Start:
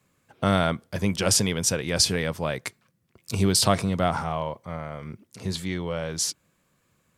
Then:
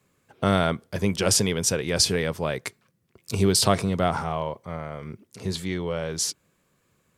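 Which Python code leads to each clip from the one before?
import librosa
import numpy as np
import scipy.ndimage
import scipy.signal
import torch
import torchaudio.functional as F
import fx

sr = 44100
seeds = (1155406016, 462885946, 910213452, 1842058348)

y = fx.peak_eq(x, sr, hz=410.0, db=5.0, octaves=0.4)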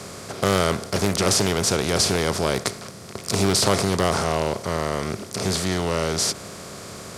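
y = fx.bin_compress(x, sr, power=0.4)
y = fx.doppler_dist(y, sr, depth_ms=0.35)
y = y * 10.0 ** (-2.5 / 20.0)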